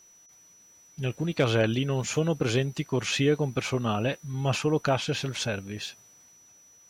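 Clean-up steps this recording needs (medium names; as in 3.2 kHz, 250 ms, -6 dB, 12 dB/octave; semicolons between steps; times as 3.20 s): clip repair -12.5 dBFS; band-stop 5.9 kHz, Q 30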